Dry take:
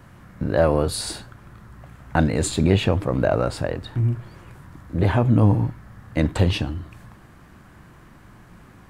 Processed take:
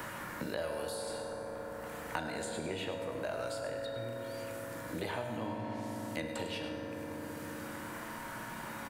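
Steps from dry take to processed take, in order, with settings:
first-order pre-emphasis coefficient 0.8
0:05.36–0:06.15: treble cut that deepens with the level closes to 2,900 Hz, closed at −30 dBFS
bass and treble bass −13 dB, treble −5 dB
tuned comb filter 470 Hz, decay 0.41 s, mix 70%
single-tap delay 101 ms −10.5 dB
on a send at −1 dB: convolution reverb RT60 2.6 s, pre-delay 3 ms
on the sum: multiband upward and downward compressor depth 100%
level +6.5 dB

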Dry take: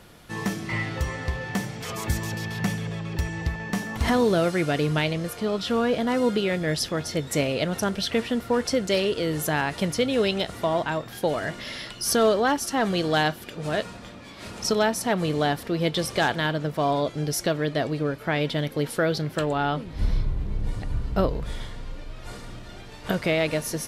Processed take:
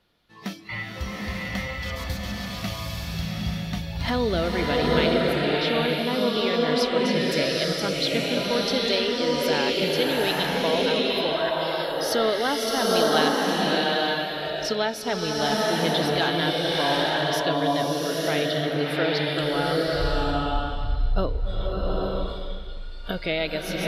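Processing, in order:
noise reduction from a noise print of the clip's start 15 dB
octave-band graphic EQ 125/4,000/8,000 Hz −4/+9/−11 dB
slow-attack reverb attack 880 ms, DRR −4 dB
level −3.5 dB

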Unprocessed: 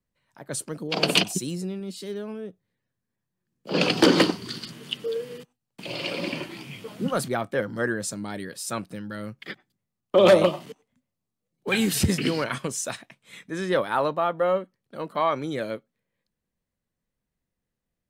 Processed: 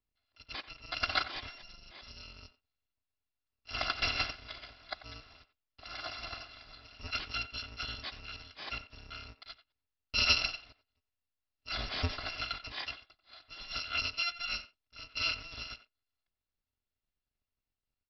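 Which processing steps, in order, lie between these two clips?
samples in bit-reversed order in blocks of 256 samples
far-end echo of a speakerphone 90 ms, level −14 dB
downsampling to 11,025 Hz
level −3.5 dB

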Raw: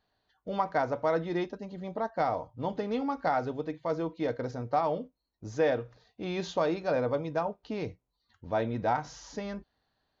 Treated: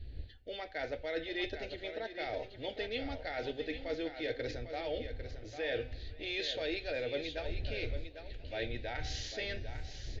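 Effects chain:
wind on the microphone 82 Hz −39 dBFS
flat-topped bell 2,700 Hz +14.5 dB
hum removal 254.4 Hz, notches 27
reversed playback
downward compressor, threshold −33 dBFS, peak gain reduction 13.5 dB
reversed playback
phaser with its sweep stopped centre 440 Hz, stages 4
on a send: single-tap delay 800 ms −9.5 dB
on the sum: feedback echo with a swinging delay time 511 ms, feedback 73%, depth 178 cents, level −23 dB
level +1 dB

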